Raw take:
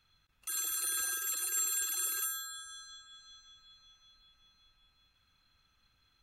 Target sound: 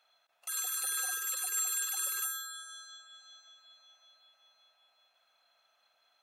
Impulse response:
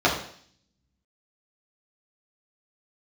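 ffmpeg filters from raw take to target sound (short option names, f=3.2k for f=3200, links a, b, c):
-af "highpass=f=660:t=q:w=7.9"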